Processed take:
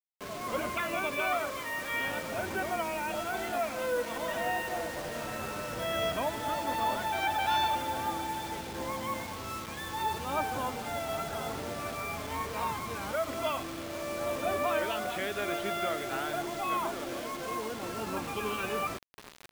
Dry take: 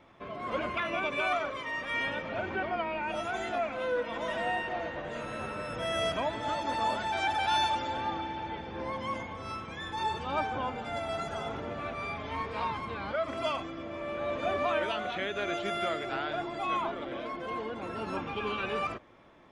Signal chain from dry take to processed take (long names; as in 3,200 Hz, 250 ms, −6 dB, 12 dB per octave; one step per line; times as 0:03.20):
high-frequency loss of the air 83 metres
repeating echo 807 ms, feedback 45%, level −16.5 dB
bit reduction 7 bits